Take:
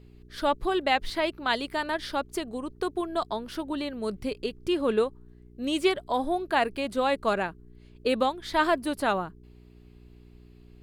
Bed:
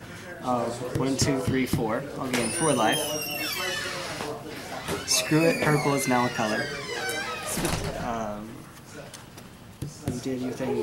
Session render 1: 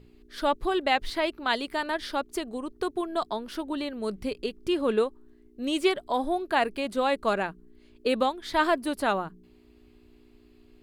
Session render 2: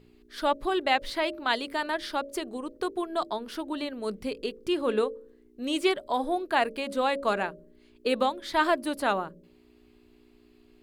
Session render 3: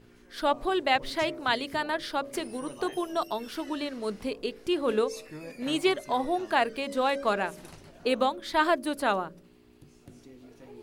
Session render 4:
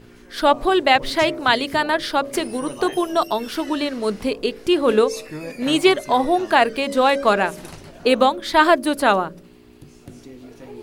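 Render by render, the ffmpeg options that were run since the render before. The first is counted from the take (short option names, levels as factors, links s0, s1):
-af "bandreject=f=60:t=h:w=4,bandreject=f=120:t=h:w=4,bandreject=f=180:t=h:w=4"
-af "lowshelf=f=130:g=-6.5,bandreject=f=55.7:t=h:w=4,bandreject=f=111.4:t=h:w=4,bandreject=f=167.1:t=h:w=4,bandreject=f=222.8:t=h:w=4,bandreject=f=278.5:t=h:w=4,bandreject=f=334.2:t=h:w=4,bandreject=f=389.9:t=h:w=4,bandreject=f=445.6:t=h:w=4,bandreject=f=501.3:t=h:w=4,bandreject=f=557:t=h:w=4,bandreject=f=612.7:t=h:w=4"
-filter_complex "[1:a]volume=0.0891[s0];[0:a][s0]amix=inputs=2:normalize=0"
-af "volume=3.16,alimiter=limit=0.794:level=0:latency=1"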